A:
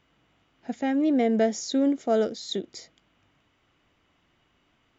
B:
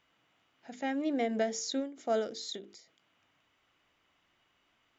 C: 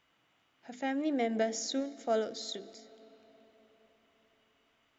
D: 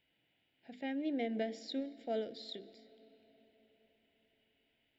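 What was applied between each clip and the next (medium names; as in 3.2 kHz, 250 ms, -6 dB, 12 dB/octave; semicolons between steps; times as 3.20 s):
bass shelf 430 Hz -9.5 dB; hum notches 50/100/150/200/250/300/350/400/450 Hz; endings held to a fixed fall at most 130 dB/s; trim -2.5 dB
algorithmic reverb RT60 4.8 s, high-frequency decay 0.6×, pre-delay 85 ms, DRR 19.5 dB
static phaser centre 2.8 kHz, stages 4; trim -3.5 dB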